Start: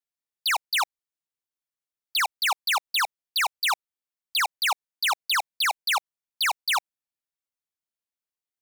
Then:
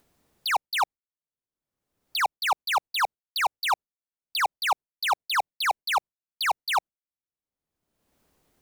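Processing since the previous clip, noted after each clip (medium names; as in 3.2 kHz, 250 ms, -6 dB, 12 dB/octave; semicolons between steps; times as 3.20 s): gate with hold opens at -27 dBFS; tilt shelf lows +9.5 dB, about 940 Hz; in parallel at -0.5 dB: upward compressor, threshold -26 dBFS; on the sum: trim -3 dB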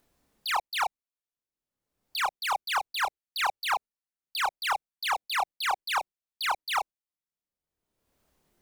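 chorus voices 4, 0.36 Hz, delay 29 ms, depth 3 ms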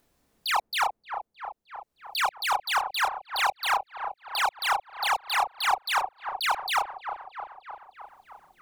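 feedback echo behind a low-pass 308 ms, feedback 66%, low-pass 1.1 kHz, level -6.5 dB; trim +2.5 dB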